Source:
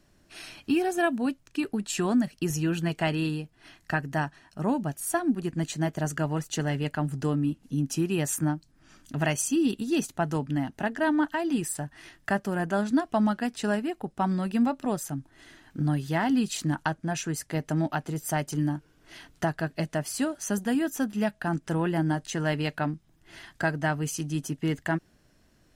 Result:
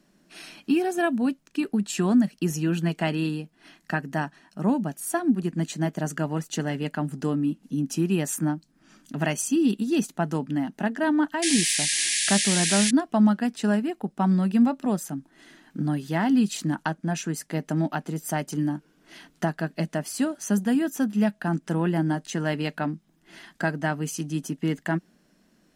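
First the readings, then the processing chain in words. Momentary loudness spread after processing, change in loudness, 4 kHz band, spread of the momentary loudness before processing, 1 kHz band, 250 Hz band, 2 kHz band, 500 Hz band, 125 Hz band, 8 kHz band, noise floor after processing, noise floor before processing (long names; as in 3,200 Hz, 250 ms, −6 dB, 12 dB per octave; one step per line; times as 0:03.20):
10 LU, +3.0 dB, +7.5 dB, 7 LU, +0.5 dB, +3.5 dB, +1.5 dB, +1.0 dB, +1.0 dB, +6.5 dB, −64 dBFS, −63 dBFS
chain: low shelf with overshoot 140 Hz −9.5 dB, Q 3
sound drawn into the spectrogram noise, 0:11.42–0:12.91, 1,600–11,000 Hz −25 dBFS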